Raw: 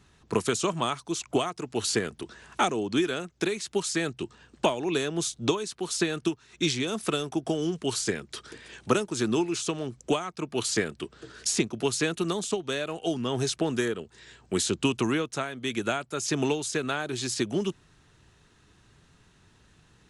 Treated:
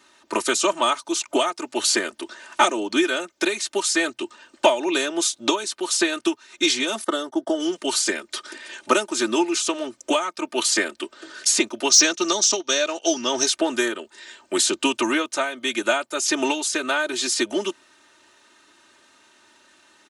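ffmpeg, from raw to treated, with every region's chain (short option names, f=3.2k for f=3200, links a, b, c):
-filter_complex "[0:a]asettb=1/sr,asplit=3[a][b][c];[a]atrim=end=7.044[d];[b]atrim=start=7.04:end=7.6,asetpts=PTS-STARTPTS,afade=t=in:d=0.004:c=qsin,afade=t=out:st=0.556:d=0.004:c=qsin,highshelf=f=3.4k:g=-9,agate=range=-17dB:threshold=-41dB:ratio=16:release=100:detection=peak,asuperstop=centerf=2500:order=4:qfactor=3.2[e];[c]atrim=start=7.596[f];[d][e]acrossfade=d=0.004:c1=hsin:c2=qsin[g];[g][f]acrossfade=d=0.004:c1=qsin:c2=hsin,asettb=1/sr,asplit=3[h][i][j];[h]atrim=end=11.894[k];[i]atrim=start=11.89:end=13.46,asetpts=PTS-STARTPTS,afade=t=in:d=0.004:c=qsin,afade=t=out:st=1.566:d=0.004:c=qsin,agate=range=-9dB:threshold=-38dB:ratio=16:release=100:detection=peak,lowpass=f=5.8k:t=q:w=7.9[l];[j]atrim=start=13.456[m];[k][l]acrossfade=d=0.004:c1=hsin:c2=qsin[n];[n][m]acrossfade=d=0.004:c1=qsin:c2=hsin,highpass=430,aecho=1:1:3.3:0.91,acontrast=56"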